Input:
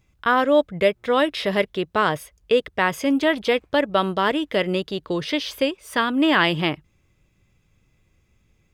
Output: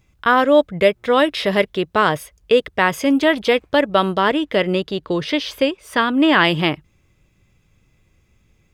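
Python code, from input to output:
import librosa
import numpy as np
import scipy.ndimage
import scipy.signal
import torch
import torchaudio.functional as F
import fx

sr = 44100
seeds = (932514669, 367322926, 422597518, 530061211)

y = fx.high_shelf(x, sr, hz=5900.0, db=-6.0, at=(4.19, 6.45))
y = y * librosa.db_to_amplitude(4.0)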